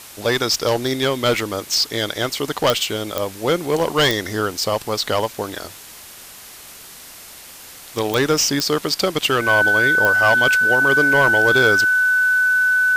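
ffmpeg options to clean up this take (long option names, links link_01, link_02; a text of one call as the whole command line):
ffmpeg -i in.wav -af "adeclick=threshold=4,bandreject=frequency=1500:width=30,afftdn=noise_reduction=24:noise_floor=-40" out.wav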